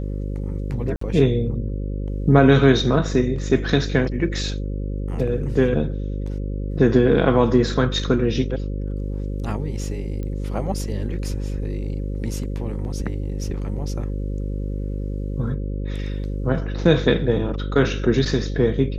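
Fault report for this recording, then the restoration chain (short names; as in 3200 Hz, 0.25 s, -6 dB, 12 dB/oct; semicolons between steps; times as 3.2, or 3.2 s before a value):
buzz 50 Hz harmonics 11 -26 dBFS
0.96–1.01 gap 54 ms
10.23 pop -20 dBFS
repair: de-click; de-hum 50 Hz, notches 11; interpolate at 0.96, 54 ms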